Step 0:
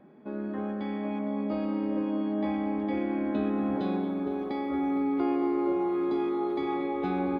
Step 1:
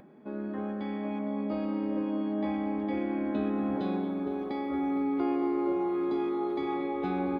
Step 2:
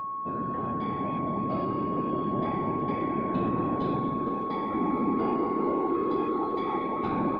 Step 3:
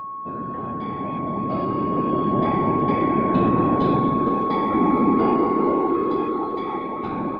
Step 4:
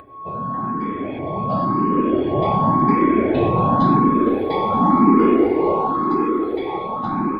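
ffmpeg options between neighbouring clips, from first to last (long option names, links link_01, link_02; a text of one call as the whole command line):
ffmpeg -i in.wav -af "acompressor=mode=upward:threshold=-49dB:ratio=2.5,volume=-1.5dB" out.wav
ffmpeg -i in.wav -af "afftfilt=real='hypot(re,im)*cos(2*PI*random(0))':imag='hypot(re,im)*sin(2*PI*random(1))':win_size=512:overlap=0.75,aeval=exprs='val(0)+0.0126*sin(2*PI*1100*n/s)':channel_layout=same,volume=7dB" out.wav
ffmpeg -i in.wav -af "dynaudnorm=framelen=210:gausssize=17:maxgain=7.5dB,volume=1.5dB" out.wav
ffmpeg -i in.wav -filter_complex "[0:a]asplit=2[link_01][link_02];[link_02]afreqshift=0.92[link_03];[link_01][link_03]amix=inputs=2:normalize=1,volume=6dB" out.wav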